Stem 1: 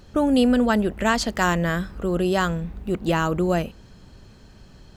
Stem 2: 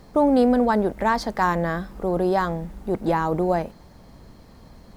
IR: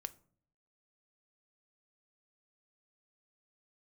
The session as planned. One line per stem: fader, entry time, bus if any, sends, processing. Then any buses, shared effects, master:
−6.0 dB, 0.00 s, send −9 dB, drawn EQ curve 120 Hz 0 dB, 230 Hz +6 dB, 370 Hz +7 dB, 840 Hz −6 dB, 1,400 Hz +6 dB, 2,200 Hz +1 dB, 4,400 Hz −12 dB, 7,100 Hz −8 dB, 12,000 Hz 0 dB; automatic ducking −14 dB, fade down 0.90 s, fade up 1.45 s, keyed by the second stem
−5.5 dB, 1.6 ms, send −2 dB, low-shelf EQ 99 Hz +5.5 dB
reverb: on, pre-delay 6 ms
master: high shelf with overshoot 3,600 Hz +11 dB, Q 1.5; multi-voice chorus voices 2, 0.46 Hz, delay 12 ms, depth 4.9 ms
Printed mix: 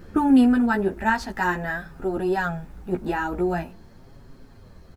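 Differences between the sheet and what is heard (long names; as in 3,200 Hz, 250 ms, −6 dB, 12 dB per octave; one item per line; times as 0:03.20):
stem 1 −6.0 dB → +2.5 dB
master: missing high shelf with overshoot 3,600 Hz +11 dB, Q 1.5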